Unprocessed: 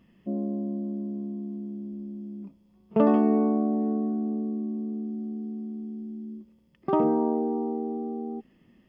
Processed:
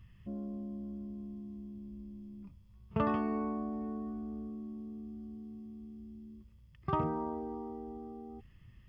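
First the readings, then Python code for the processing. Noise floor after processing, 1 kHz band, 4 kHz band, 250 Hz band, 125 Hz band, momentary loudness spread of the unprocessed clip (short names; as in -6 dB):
-59 dBFS, -6.5 dB, n/a, -12.0 dB, -4.5 dB, 16 LU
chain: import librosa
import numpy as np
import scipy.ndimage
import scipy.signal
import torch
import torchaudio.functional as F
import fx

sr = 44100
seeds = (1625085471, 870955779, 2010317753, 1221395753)

y = fx.curve_eq(x, sr, hz=(110.0, 230.0, 750.0, 1100.0), db=(0, -29, -27, -16))
y = y * librosa.db_to_amplitude(15.0)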